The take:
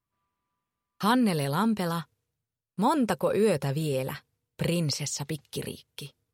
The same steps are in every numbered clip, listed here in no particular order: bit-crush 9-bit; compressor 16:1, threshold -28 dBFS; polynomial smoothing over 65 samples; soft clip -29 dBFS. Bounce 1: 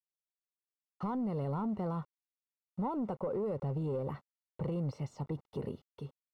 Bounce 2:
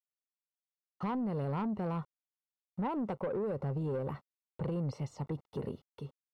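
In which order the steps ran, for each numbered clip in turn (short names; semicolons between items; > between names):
compressor > soft clip > bit-crush > polynomial smoothing; bit-crush > polynomial smoothing > compressor > soft clip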